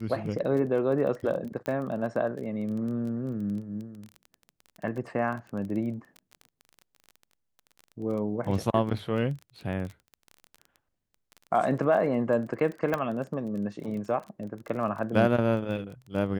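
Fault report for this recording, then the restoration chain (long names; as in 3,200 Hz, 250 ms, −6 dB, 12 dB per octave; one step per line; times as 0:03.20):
surface crackle 21 per second −35 dBFS
0:01.66: click −18 dBFS
0:12.94: click −15 dBFS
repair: click removal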